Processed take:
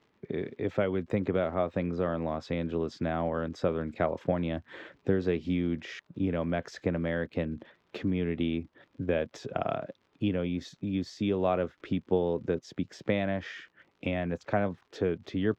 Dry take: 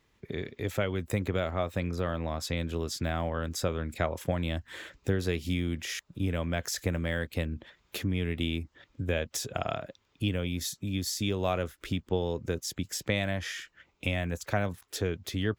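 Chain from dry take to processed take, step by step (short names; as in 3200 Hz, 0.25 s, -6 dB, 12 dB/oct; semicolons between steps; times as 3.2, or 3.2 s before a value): HPF 170 Hz 12 dB/oct; tilt shelf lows +5 dB, about 1400 Hz; crackle 86/s -47 dBFS; air absorption 180 m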